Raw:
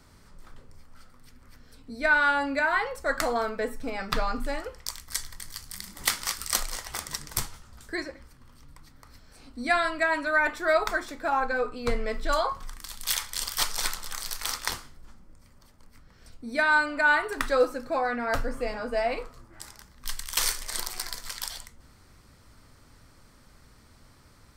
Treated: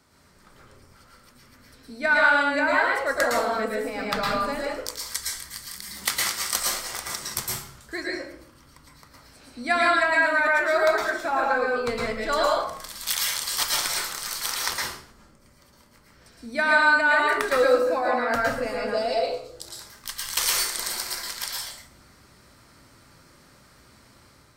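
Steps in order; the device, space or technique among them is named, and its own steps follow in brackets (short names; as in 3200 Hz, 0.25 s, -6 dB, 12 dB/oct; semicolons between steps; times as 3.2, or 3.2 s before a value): 18.9–19.69 graphic EQ 250/500/1000/2000/4000 Hz -8/+7/-7/-11/+9 dB; far laptop microphone (reverb RT60 0.60 s, pre-delay 0.106 s, DRR -2.5 dB; HPF 180 Hz 6 dB/oct; AGC gain up to 4 dB); gain -3 dB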